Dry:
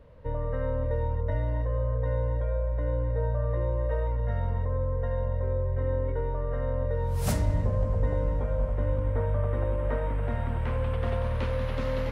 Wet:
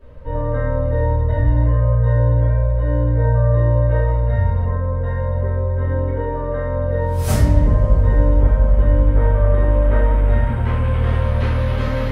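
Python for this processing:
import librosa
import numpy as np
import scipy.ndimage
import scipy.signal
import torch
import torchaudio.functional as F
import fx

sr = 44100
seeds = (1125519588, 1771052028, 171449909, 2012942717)

y = fx.room_shoebox(x, sr, seeds[0], volume_m3=100.0, walls='mixed', distance_m=2.8)
y = F.gain(torch.from_numpy(y), -2.0).numpy()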